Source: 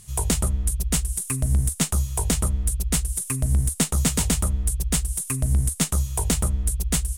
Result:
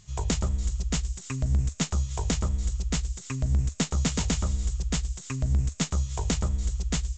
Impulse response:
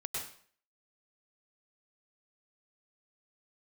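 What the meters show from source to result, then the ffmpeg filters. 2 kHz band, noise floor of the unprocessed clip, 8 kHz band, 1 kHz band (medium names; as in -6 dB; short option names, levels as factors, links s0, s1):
-3.5 dB, -39 dBFS, -10.0 dB, -3.5 dB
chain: -filter_complex "[0:a]asplit=2[s0][s1];[s1]aderivative[s2];[1:a]atrim=start_sample=2205,asetrate=24255,aresample=44100,adelay=111[s3];[s2][s3]afir=irnorm=-1:irlink=0,volume=0.178[s4];[s0][s4]amix=inputs=2:normalize=0,aresample=16000,aresample=44100,volume=0.668"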